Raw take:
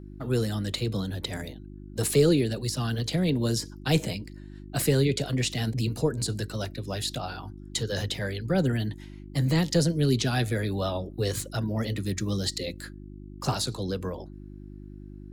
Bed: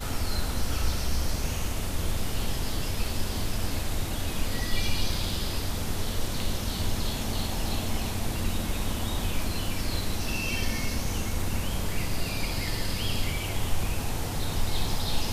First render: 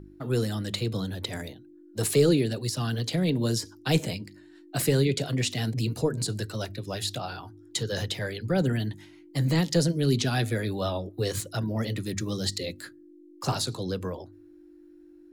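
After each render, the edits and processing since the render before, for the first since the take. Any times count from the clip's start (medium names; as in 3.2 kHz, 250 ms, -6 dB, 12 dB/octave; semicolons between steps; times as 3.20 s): de-hum 50 Hz, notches 5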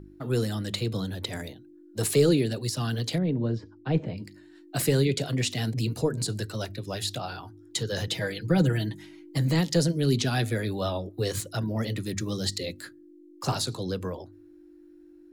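3.18–4.18 s: tape spacing loss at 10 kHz 45 dB; 8.07–9.38 s: comb 6.2 ms, depth 80%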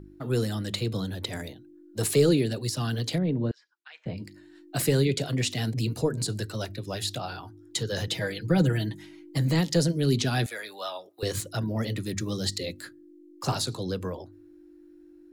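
3.51–4.06 s: ladder high-pass 1.3 kHz, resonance 30%; 10.46–11.23 s: high-pass 820 Hz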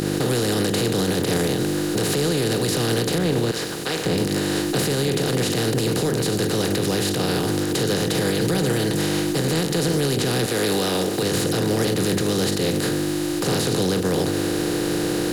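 spectral levelling over time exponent 0.2; peak limiter -12.5 dBFS, peak gain reduction 9.5 dB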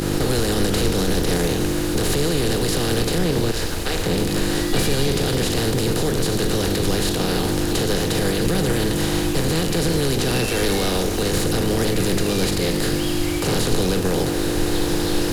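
add bed +2 dB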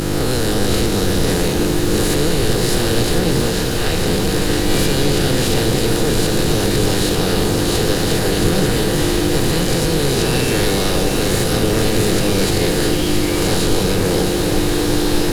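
reverse spectral sustain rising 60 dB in 0.92 s; echo whose repeats swap between lows and highs 336 ms, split 1.1 kHz, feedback 85%, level -5.5 dB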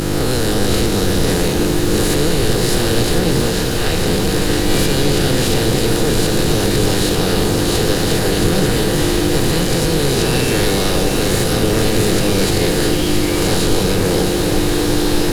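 trim +1 dB; peak limiter -3 dBFS, peak gain reduction 1.5 dB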